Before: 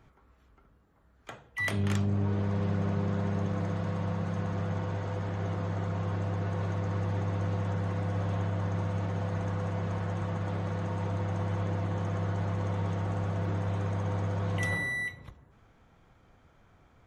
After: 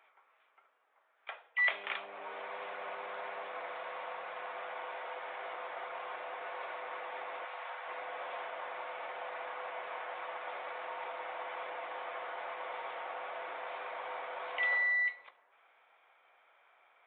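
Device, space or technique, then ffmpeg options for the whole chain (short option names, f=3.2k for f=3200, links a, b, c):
musical greeting card: -filter_complex "[0:a]asplit=3[a][b][c];[a]afade=t=out:st=7.44:d=0.02[d];[b]highpass=640,afade=t=in:st=7.44:d=0.02,afade=t=out:st=7.86:d=0.02[e];[c]afade=t=in:st=7.86:d=0.02[f];[d][e][f]amix=inputs=3:normalize=0,aresample=8000,aresample=44100,highpass=f=610:w=0.5412,highpass=f=610:w=1.3066,equalizer=f=2.3k:t=o:w=0.34:g=7"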